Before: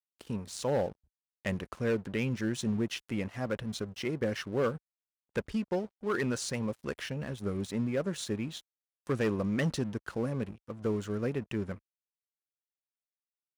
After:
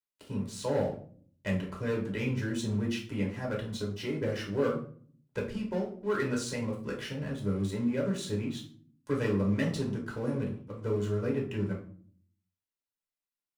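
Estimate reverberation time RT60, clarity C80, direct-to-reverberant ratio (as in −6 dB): 0.50 s, 13.0 dB, −2.0 dB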